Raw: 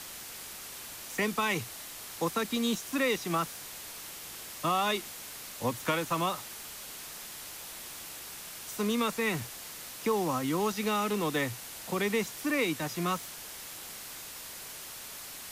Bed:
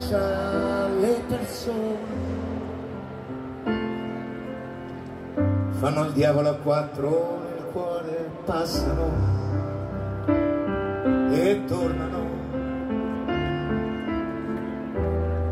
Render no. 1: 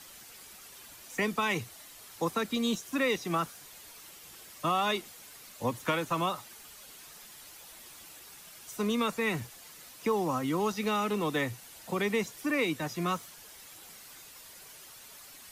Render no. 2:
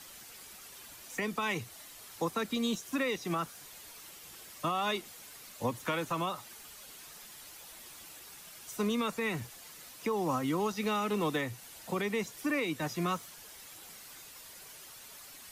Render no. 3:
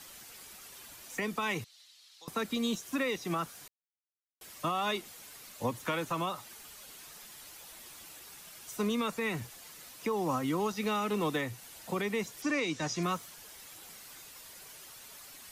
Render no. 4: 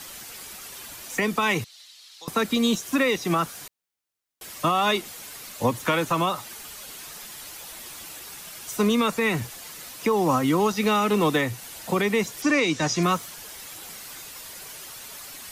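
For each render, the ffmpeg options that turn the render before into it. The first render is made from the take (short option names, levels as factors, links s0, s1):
-af "afftdn=nr=9:nf=-44"
-af "alimiter=limit=0.0794:level=0:latency=1:release=226"
-filter_complex "[0:a]asettb=1/sr,asplit=3[s0][s1][s2];[s0]atrim=end=1.644[s3];[s1]atrim=start=1.64:end=2.28,asetpts=PTS-STARTPTS,afade=t=in:d=0.004:c=qsin,afade=t=out:st=0.636:d=0.004:c=qsin,bandpass=f=4100:t=q:w=2.5[s4];[s2]atrim=start=2.276[s5];[s3][s4]acrossfade=d=0.004:c1=hsin:c2=qsin[s6];[s6][s5]acrossfade=d=0.004:c1=qsin:c2=hsin,asettb=1/sr,asplit=3[s7][s8][s9];[s7]atrim=end=12.424[s10];[s8]atrim=start=12.42:end=13.03,asetpts=PTS-STARTPTS,afade=t=in:d=0.004:c=qsin,afade=t=out:st=0.606:d=0.004:c=qsin,lowpass=f=6200:t=q:w=2.6[s11];[s9]atrim=start=13.026[s12];[s10][s11]acrossfade=d=0.004:c1=hsin:c2=qsin[s13];[s13][s12]acrossfade=d=0.004:c1=qsin:c2=hsin,asplit=3[s14][s15][s16];[s14]atrim=end=3.68,asetpts=PTS-STARTPTS,afade=t=out:st=3.676:d=0.004:c=hsin[s17];[s15]atrim=start=3.68:end=4.41,asetpts=PTS-STARTPTS,volume=0[s18];[s16]atrim=start=4.41,asetpts=PTS-STARTPTS,afade=t=in:d=0.004:c=hsin[s19];[s17][s18][s19]concat=n=3:v=0:a=1"
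-af "volume=3.16"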